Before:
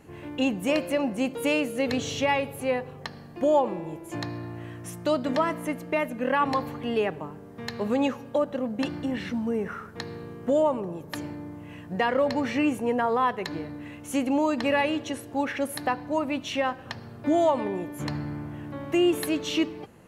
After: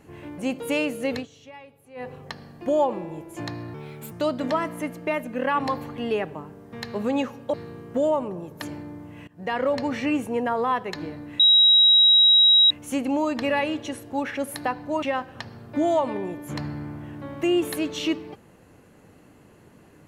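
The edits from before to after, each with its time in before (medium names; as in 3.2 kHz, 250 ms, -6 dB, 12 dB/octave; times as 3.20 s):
0.38–1.13 s: delete
1.88–2.84 s: dip -20 dB, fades 0.14 s
4.49–4.97 s: speed 128%
8.39–10.06 s: delete
11.80–12.13 s: fade in, from -22 dB
13.92 s: add tone 3.84 kHz -12 dBFS 1.31 s
16.24–16.53 s: delete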